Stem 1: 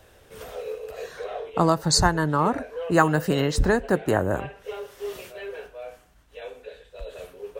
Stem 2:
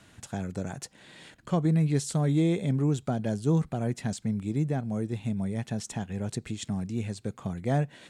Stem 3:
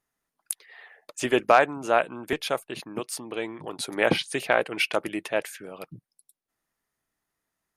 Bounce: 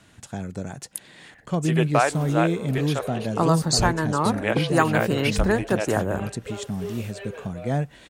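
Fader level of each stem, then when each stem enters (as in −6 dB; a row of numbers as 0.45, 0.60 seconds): −1.5, +1.5, −2.5 decibels; 1.80, 0.00, 0.45 seconds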